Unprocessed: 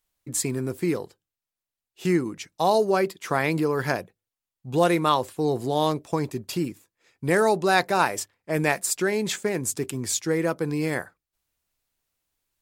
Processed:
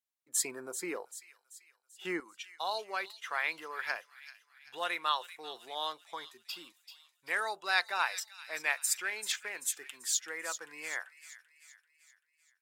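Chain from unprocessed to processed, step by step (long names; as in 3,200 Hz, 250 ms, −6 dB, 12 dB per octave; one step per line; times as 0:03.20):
noise reduction from a noise print of the clip's start 12 dB
high-pass filter 640 Hz 12 dB per octave, from 0:02.20 1,400 Hz
delay with a high-pass on its return 388 ms, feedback 49%, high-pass 2,600 Hz, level −10 dB
level −3.5 dB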